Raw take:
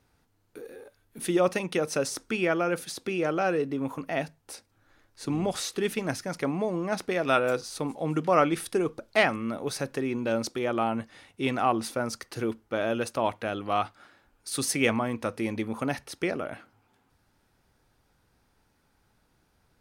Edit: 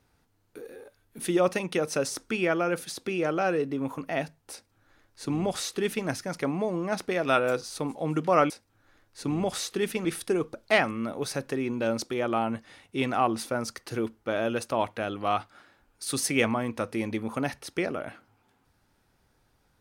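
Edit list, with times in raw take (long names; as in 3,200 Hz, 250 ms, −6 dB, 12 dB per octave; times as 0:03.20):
0:04.52–0:06.07: duplicate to 0:08.50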